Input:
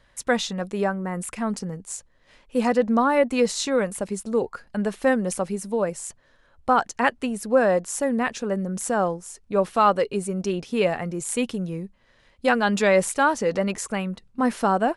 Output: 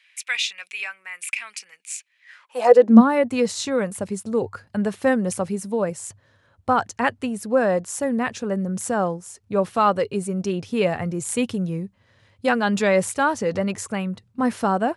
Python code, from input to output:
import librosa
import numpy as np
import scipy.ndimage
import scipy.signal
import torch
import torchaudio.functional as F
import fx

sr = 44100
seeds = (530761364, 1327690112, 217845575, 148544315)

p1 = fx.rider(x, sr, range_db=4, speed_s=2.0)
p2 = x + (p1 * 10.0 ** (3.0 / 20.0))
p3 = fx.filter_sweep_highpass(p2, sr, from_hz=2400.0, to_hz=99.0, start_s=2.2, end_s=3.25, q=7.8)
y = p3 * 10.0 ** (-8.5 / 20.0)